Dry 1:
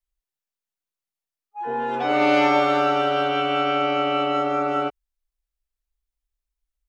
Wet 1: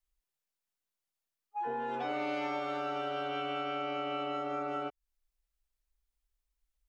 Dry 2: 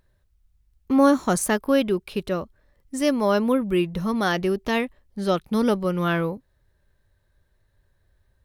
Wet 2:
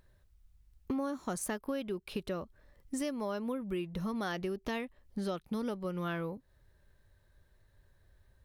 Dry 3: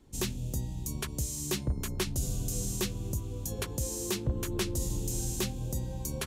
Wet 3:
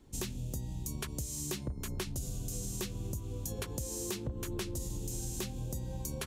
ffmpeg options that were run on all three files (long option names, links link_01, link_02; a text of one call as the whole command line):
ffmpeg -i in.wav -af "acompressor=threshold=-34dB:ratio=6" out.wav